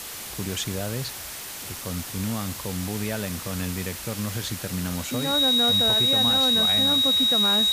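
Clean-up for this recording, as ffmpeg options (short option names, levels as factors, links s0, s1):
-af "bandreject=f=3800:w=30,afwtdn=0.018"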